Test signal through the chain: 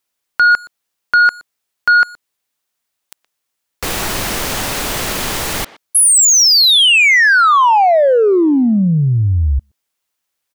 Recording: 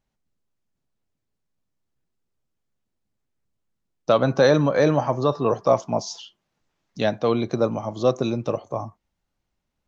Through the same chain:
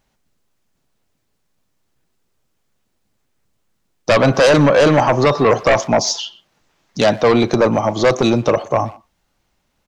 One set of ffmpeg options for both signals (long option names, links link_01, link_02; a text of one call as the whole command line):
ffmpeg -i in.wav -filter_complex "[0:a]lowshelf=frequency=330:gain=-5.5,asplit=2[link_01][link_02];[link_02]alimiter=limit=-15.5dB:level=0:latency=1:release=26,volume=1dB[link_03];[link_01][link_03]amix=inputs=2:normalize=0,aeval=exprs='0.668*sin(PI/2*2.51*val(0)/0.668)':channel_layout=same,asplit=2[link_04][link_05];[link_05]adelay=120,highpass=300,lowpass=3400,asoftclip=type=hard:threshold=-13dB,volume=-17dB[link_06];[link_04][link_06]amix=inputs=2:normalize=0,volume=-3.5dB" out.wav